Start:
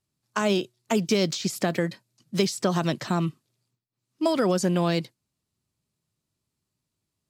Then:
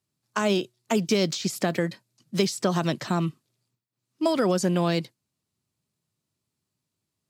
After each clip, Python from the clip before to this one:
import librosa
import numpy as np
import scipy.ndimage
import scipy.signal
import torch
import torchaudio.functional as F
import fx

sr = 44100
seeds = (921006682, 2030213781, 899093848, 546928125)

y = scipy.signal.sosfilt(scipy.signal.butter(2, 83.0, 'highpass', fs=sr, output='sos'), x)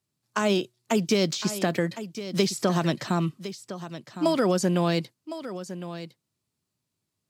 y = x + 10.0 ** (-12.5 / 20.0) * np.pad(x, (int(1059 * sr / 1000.0), 0))[:len(x)]